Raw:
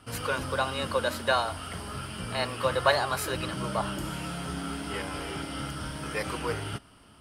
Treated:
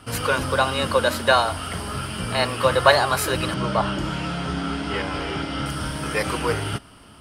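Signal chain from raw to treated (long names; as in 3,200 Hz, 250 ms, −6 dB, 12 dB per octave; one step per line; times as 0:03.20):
0:03.54–0:05.66: low-pass filter 5,500 Hz 12 dB per octave
level +8 dB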